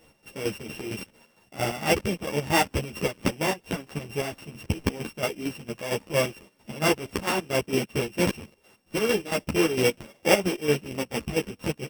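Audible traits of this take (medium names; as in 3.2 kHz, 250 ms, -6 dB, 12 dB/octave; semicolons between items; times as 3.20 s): a buzz of ramps at a fixed pitch in blocks of 16 samples; chopped level 4.4 Hz, depth 65%, duty 50%; a shimmering, thickened sound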